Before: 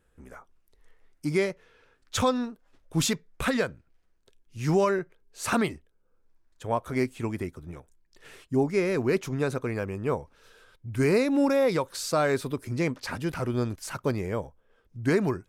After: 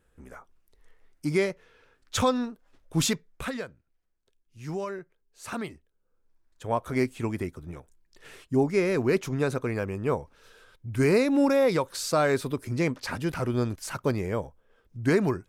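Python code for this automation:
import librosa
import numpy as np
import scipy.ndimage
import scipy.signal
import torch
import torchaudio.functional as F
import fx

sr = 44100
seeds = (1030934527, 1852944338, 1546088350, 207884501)

y = fx.gain(x, sr, db=fx.line((3.12, 0.5), (3.67, -10.0), (5.43, -10.0), (6.84, 1.0)))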